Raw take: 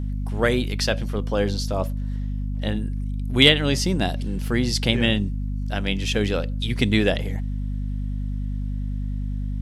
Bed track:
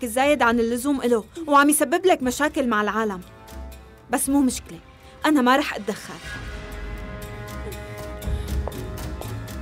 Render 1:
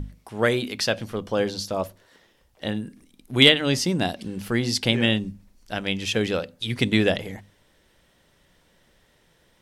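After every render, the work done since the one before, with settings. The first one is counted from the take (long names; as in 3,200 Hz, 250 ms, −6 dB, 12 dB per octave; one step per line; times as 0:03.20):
mains-hum notches 50/100/150/200/250 Hz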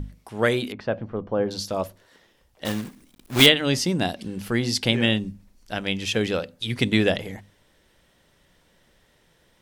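0:00.72–0:01.51: low-pass filter 1,200 Hz
0:02.65–0:03.47: one scale factor per block 3 bits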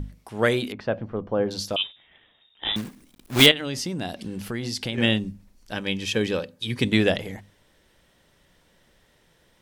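0:01.76–0:02.76: voice inversion scrambler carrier 3,700 Hz
0:03.51–0:04.98: downward compressor 3 to 1, threshold −27 dBFS
0:05.73–0:06.85: notch comb filter 690 Hz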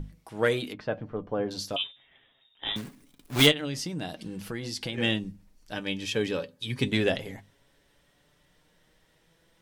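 soft clipping −5 dBFS, distortion −19 dB
flanger 0.21 Hz, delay 6 ms, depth 1.5 ms, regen +51%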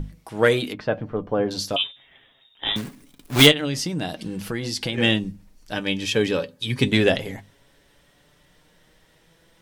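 level +7 dB
brickwall limiter −1 dBFS, peak gain reduction 1 dB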